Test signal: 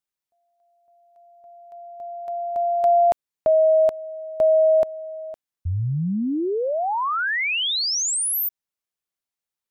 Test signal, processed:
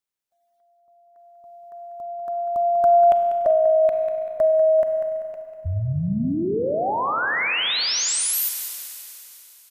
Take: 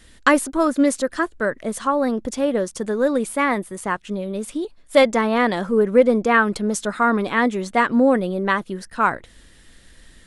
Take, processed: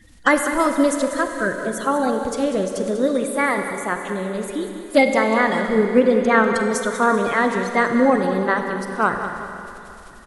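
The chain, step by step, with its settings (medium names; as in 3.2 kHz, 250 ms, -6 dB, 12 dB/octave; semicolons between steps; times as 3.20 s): coarse spectral quantiser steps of 30 dB; feedback delay 194 ms, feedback 35%, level -11.5 dB; Schroeder reverb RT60 3.1 s, combs from 32 ms, DRR 6 dB; endings held to a fixed fall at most 210 dB/s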